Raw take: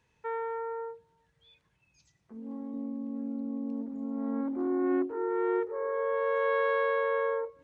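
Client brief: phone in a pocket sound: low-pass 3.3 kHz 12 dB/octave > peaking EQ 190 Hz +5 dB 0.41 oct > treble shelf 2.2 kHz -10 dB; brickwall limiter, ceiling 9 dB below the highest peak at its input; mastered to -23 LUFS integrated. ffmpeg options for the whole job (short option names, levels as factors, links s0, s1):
-af "alimiter=level_in=1.41:limit=0.0631:level=0:latency=1,volume=0.708,lowpass=3300,equalizer=f=190:t=o:w=0.41:g=5,highshelf=f=2200:g=-10,volume=4.47"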